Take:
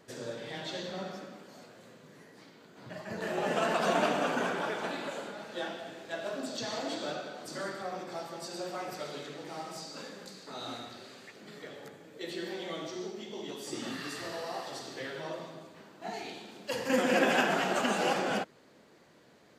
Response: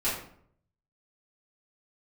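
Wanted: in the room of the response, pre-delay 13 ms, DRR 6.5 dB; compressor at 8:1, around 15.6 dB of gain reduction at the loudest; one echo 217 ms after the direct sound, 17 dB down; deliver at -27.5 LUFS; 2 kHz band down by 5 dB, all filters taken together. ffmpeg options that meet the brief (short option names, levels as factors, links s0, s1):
-filter_complex "[0:a]equalizer=f=2000:t=o:g=-7,acompressor=threshold=0.01:ratio=8,aecho=1:1:217:0.141,asplit=2[s0][s1];[1:a]atrim=start_sample=2205,adelay=13[s2];[s1][s2]afir=irnorm=-1:irlink=0,volume=0.158[s3];[s0][s3]amix=inputs=2:normalize=0,volume=6.31"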